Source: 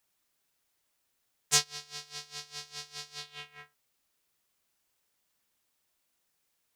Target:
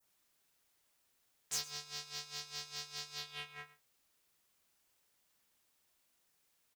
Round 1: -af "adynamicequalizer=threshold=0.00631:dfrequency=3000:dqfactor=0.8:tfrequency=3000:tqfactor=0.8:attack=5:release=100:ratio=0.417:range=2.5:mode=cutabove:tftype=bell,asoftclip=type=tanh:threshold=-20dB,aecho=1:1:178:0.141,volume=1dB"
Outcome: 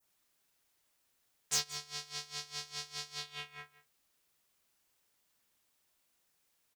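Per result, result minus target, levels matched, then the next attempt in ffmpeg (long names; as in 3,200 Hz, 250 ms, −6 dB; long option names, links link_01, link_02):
echo 63 ms late; soft clipping: distortion −4 dB
-af "adynamicequalizer=threshold=0.00631:dfrequency=3000:dqfactor=0.8:tfrequency=3000:tqfactor=0.8:attack=5:release=100:ratio=0.417:range=2.5:mode=cutabove:tftype=bell,asoftclip=type=tanh:threshold=-20dB,aecho=1:1:115:0.141,volume=1dB"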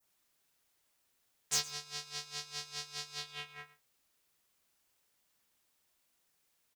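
soft clipping: distortion −4 dB
-af "adynamicequalizer=threshold=0.00631:dfrequency=3000:dqfactor=0.8:tfrequency=3000:tqfactor=0.8:attack=5:release=100:ratio=0.417:range=2.5:mode=cutabove:tftype=bell,asoftclip=type=tanh:threshold=-29dB,aecho=1:1:115:0.141,volume=1dB"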